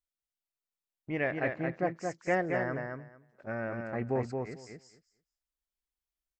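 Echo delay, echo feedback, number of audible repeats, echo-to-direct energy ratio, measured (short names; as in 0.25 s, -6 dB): 0.223 s, 15%, 2, -4.5 dB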